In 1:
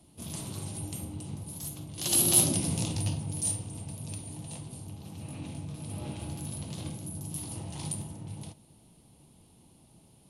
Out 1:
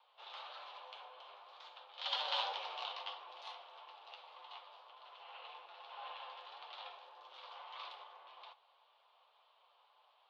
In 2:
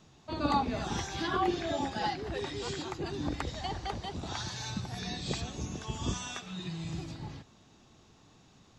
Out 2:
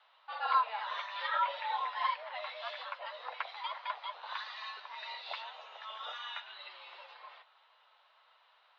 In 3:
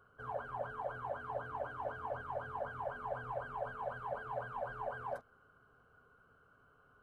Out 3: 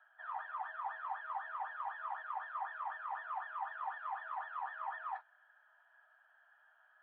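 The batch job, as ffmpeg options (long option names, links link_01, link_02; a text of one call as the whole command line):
ffmpeg -i in.wav -af "flanger=delay=7.2:depth=3.2:regen=-32:speed=1.8:shape=sinusoidal,highpass=frequency=530:width_type=q:width=0.5412,highpass=frequency=530:width_type=q:width=1.307,lowpass=frequency=3500:width_type=q:width=0.5176,lowpass=frequency=3500:width_type=q:width=0.7071,lowpass=frequency=3500:width_type=q:width=1.932,afreqshift=210,volume=4dB" out.wav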